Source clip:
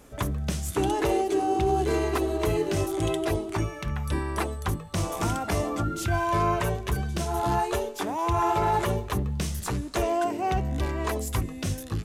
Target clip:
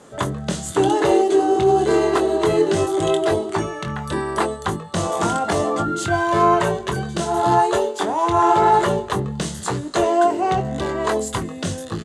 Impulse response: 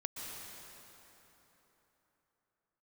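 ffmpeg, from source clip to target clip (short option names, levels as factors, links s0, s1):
-filter_complex "[0:a]highpass=160,equalizer=f=260:t=q:w=4:g=-6,equalizer=f=2400:t=q:w=4:g=-9,equalizer=f=5500:t=q:w=4:g=-7,lowpass=f=8800:w=0.5412,lowpass=f=8800:w=1.3066,asplit=2[s0][s1];[s1]adelay=23,volume=0.422[s2];[s0][s2]amix=inputs=2:normalize=0,volume=2.66"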